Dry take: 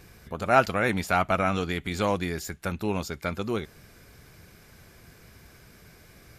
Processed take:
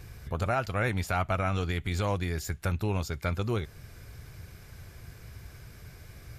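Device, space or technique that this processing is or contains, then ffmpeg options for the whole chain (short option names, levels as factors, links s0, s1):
car stereo with a boomy subwoofer: -af "lowshelf=f=150:t=q:w=1.5:g=7.5,alimiter=limit=0.126:level=0:latency=1:release=394"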